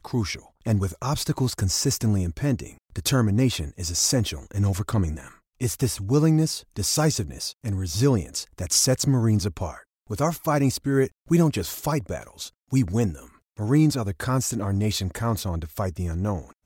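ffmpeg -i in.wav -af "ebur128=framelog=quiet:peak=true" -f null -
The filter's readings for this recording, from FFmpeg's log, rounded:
Integrated loudness:
  I:         -24.4 LUFS
  Threshold: -34.7 LUFS
Loudness range:
  LRA:         2.1 LU
  Threshold: -44.4 LUFS
  LRA low:   -25.4 LUFS
  LRA high:  -23.3 LUFS
True peak:
  Peak:       -8.3 dBFS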